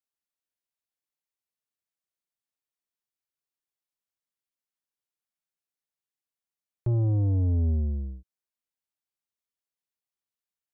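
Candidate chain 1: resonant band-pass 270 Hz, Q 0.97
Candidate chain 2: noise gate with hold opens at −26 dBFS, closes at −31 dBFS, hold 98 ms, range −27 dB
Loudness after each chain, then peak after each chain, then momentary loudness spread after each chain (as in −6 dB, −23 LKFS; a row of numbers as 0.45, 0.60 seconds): −33.5, −26.5 LKFS; −23.0, −22.0 dBFS; 11, 11 LU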